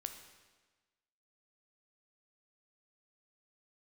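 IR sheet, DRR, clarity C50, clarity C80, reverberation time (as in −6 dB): 6.5 dB, 8.0 dB, 10.0 dB, 1.3 s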